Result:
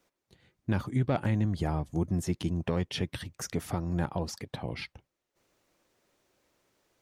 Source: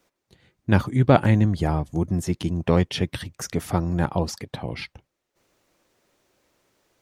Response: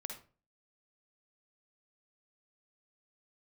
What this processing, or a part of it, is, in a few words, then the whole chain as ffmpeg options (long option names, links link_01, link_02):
soft clipper into limiter: -af "asoftclip=type=tanh:threshold=-3.5dB,alimiter=limit=-13dB:level=0:latency=1:release=213,volume=-5dB"